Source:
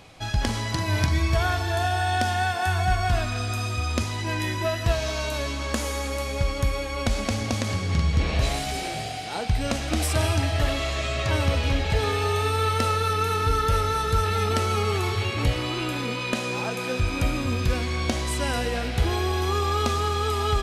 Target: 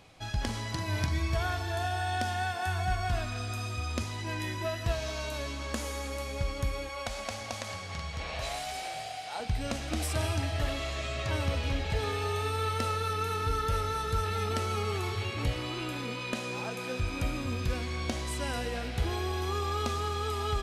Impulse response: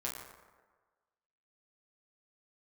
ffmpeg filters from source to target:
-filter_complex "[0:a]asettb=1/sr,asplit=3[a][b][c];[a]atrim=end=6.894[d];[b]atrim=start=6.89:end=9.4,asetpts=PTS-STARTPTS,afade=t=in:d=0.004:c=qsin,afade=t=out:st=2.506:d=0.004:c=qsin,lowshelf=f=470:t=q:w=1.5:g=-9.5[e];[c]atrim=start=9.396[f];[d][e]acrossfade=d=0.004:c1=hsin:c2=qsin[g];[g][f]acrossfade=d=0.004:c1=qsin:c2=hsin,volume=-7.5dB"

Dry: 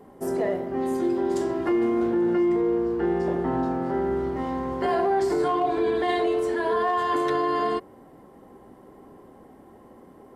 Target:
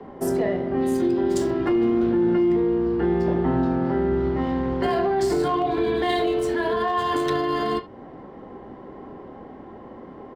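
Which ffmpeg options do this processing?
-filter_complex "[0:a]acrossover=split=230|3000[a][b][c];[b]acompressor=threshold=-38dB:ratio=2[d];[a][d][c]amix=inputs=3:normalize=0,acrossover=split=140|480|4500[e][f][g][h];[g]aecho=1:1:31|72:0.335|0.158[i];[h]aeval=exprs='sgn(val(0))*max(abs(val(0))-0.00133,0)':c=same[j];[e][f][i][j]amix=inputs=4:normalize=0,volume=8.5dB"

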